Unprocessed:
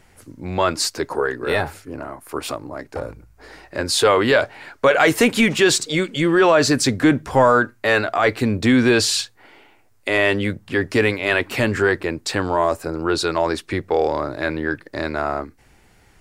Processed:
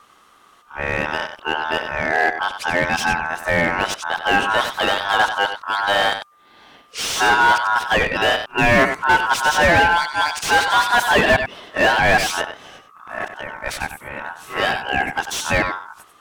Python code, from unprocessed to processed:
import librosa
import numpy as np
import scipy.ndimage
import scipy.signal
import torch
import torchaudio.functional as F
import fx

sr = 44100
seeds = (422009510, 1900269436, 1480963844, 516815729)

p1 = np.flip(x).copy()
p2 = p1 * np.sin(2.0 * np.pi * 1200.0 * np.arange(len(p1)) / sr)
p3 = p2 + fx.echo_single(p2, sr, ms=94, db=-10.0, dry=0)
p4 = fx.slew_limit(p3, sr, full_power_hz=270.0)
y = F.gain(torch.from_numpy(p4), 3.5).numpy()